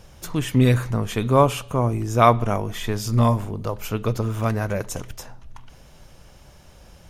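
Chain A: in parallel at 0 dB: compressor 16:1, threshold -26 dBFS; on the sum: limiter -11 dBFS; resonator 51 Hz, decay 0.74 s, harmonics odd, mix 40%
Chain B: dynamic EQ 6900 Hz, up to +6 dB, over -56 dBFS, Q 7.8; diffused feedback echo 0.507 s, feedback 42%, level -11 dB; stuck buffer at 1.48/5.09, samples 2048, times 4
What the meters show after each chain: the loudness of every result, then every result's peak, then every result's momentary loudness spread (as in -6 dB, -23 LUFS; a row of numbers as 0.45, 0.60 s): -27.0, -21.5 LUFS; -14.0, -2.0 dBFS; 10, 15 LU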